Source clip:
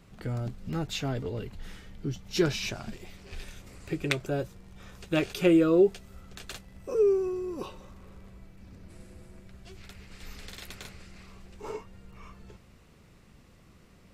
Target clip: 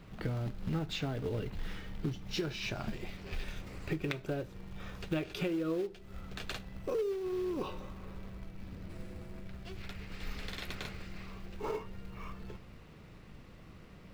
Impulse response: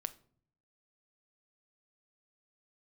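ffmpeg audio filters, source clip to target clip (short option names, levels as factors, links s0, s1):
-filter_complex "[0:a]acompressor=threshold=0.0178:ratio=16,acrusher=bits=4:mode=log:mix=0:aa=0.000001,asplit=2[s0][s1];[1:a]atrim=start_sample=2205,lowpass=4800[s2];[s1][s2]afir=irnorm=-1:irlink=0,volume=2[s3];[s0][s3]amix=inputs=2:normalize=0,volume=0.562"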